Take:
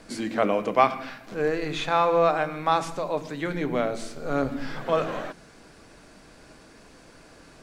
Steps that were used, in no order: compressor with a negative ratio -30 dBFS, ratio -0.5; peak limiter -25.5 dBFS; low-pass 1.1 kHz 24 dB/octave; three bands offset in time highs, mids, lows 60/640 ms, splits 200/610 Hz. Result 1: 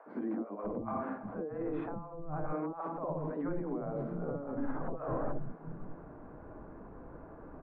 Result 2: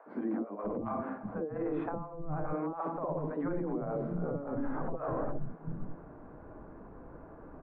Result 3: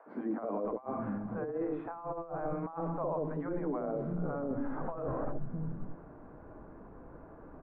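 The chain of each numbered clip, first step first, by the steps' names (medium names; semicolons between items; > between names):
compressor with a negative ratio > low-pass > peak limiter > three bands offset in time; low-pass > compressor with a negative ratio > three bands offset in time > peak limiter; three bands offset in time > compressor with a negative ratio > peak limiter > low-pass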